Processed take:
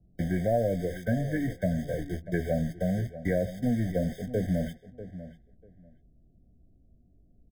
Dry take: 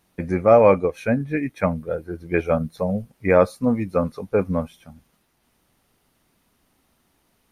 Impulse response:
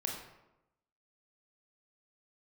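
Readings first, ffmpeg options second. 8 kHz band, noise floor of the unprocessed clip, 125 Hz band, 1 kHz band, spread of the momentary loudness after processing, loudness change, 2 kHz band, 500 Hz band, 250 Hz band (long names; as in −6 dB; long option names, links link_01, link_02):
can't be measured, −67 dBFS, −2.0 dB, −15.0 dB, 15 LU, −9.0 dB, −9.5 dB, −11.5 dB, −5.5 dB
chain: -filter_complex "[0:a]aeval=exprs='val(0)+0.5*0.0708*sgn(val(0))':channel_layout=same,agate=range=-26dB:threshold=-25dB:ratio=16:detection=peak,aemphasis=mode=reproduction:type=riaa,acrossover=split=2600[link_01][link_02];[link_02]acompressor=threshold=-51dB:ratio=4:attack=1:release=60[link_03];[link_01][link_03]amix=inputs=2:normalize=0,lowshelf=frequency=620:width_type=q:width=1.5:gain=-8.5,acrossover=split=94|720[link_04][link_05][link_06];[link_04]acompressor=threshold=-38dB:ratio=4[link_07];[link_05]acompressor=threshold=-20dB:ratio=4[link_08];[link_06]acompressor=threshold=-30dB:ratio=4[link_09];[link_07][link_08][link_09]amix=inputs=3:normalize=0,acrossover=split=520[link_10][link_11];[link_11]acrusher=bits=6:mix=0:aa=0.000001[link_12];[link_10][link_12]amix=inputs=2:normalize=0,asplit=2[link_13][link_14];[link_14]adelay=17,volume=-12dB[link_15];[link_13][link_15]amix=inputs=2:normalize=0,asplit=2[link_16][link_17];[link_17]adelay=643,lowpass=frequency=2000:poles=1,volume=-13.5dB,asplit=2[link_18][link_19];[link_19]adelay=643,lowpass=frequency=2000:poles=1,volume=0.19[link_20];[link_18][link_20]amix=inputs=2:normalize=0[link_21];[link_16][link_21]amix=inputs=2:normalize=0,afftfilt=real='re*eq(mod(floor(b*sr/1024/760),2),0)':imag='im*eq(mod(floor(b*sr/1024/760),2),0)':win_size=1024:overlap=0.75,volume=-4.5dB"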